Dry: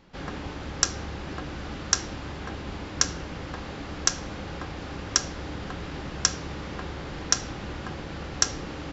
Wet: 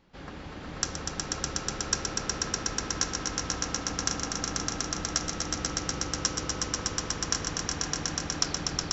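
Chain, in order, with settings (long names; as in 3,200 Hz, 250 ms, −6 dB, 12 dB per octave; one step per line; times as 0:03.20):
turntable brake at the end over 0.52 s
echo that builds up and dies away 122 ms, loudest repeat 5, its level −3.5 dB
level −7 dB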